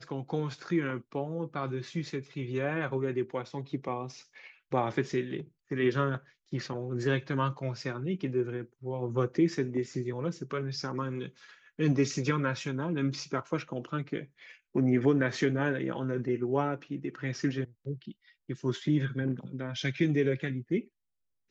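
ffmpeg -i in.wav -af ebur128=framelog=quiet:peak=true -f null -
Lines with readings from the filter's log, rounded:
Integrated loudness:
  I:         -32.1 LUFS
  Threshold: -42.4 LUFS
Loudness range:
  LRA:         3.9 LU
  Threshold: -52.3 LUFS
  LRA low:   -34.1 LUFS
  LRA high:  -30.2 LUFS
True peak:
  Peak:      -14.0 dBFS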